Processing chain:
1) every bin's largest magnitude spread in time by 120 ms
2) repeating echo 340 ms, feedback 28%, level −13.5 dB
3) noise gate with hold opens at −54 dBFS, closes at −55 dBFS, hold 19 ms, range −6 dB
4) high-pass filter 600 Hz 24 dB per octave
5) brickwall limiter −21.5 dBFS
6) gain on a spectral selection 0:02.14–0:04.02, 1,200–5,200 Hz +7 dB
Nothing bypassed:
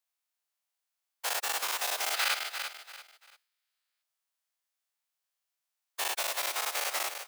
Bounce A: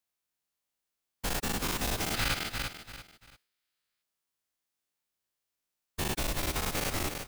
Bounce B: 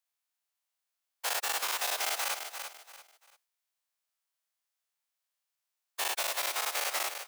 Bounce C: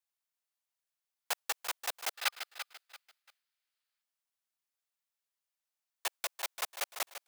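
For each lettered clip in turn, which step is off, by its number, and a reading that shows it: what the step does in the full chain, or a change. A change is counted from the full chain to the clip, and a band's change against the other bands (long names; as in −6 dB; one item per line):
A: 4, change in crest factor −1.5 dB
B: 6, change in crest factor −4.5 dB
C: 1, change in crest factor +5.0 dB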